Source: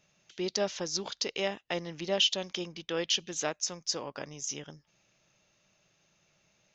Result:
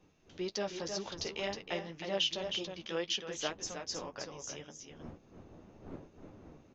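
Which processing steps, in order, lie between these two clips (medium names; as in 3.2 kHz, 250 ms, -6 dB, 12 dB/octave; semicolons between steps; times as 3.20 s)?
wind noise 320 Hz -50 dBFS; treble shelf 5.5 kHz -8.5 dB; delay 315 ms -6.5 dB; flange 1.9 Hz, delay 8.9 ms, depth 4.7 ms, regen -30%; bass shelf 220 Hz -4.5 dB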